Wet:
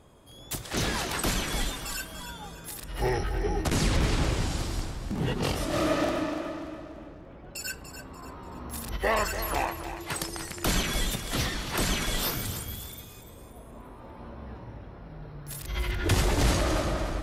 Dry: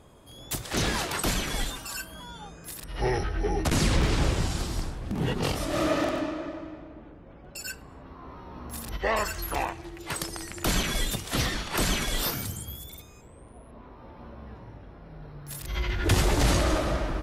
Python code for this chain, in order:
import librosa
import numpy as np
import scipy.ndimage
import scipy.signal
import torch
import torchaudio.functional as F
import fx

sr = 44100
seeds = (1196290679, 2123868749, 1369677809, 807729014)

p1 = fx.rider(x, sr, range_db=3, speed_s=2.0)
p2 = p1 + fx.echo_feedback(p1, sr, ms=291, feedback_pct=39, wet_db=-10.5, dry=0)
y = p2 * 10.0 ** (-1.5 / 20.0)